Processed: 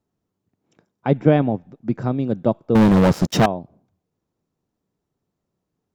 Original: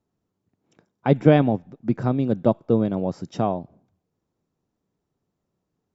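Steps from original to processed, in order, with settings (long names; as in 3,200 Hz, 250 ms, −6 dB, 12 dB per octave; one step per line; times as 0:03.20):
0:01.10–0:01.62: high-shelf EQ 4,900 Hz −10.5 dB
0:02.75–0:03.46: leveller curve on the samples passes 5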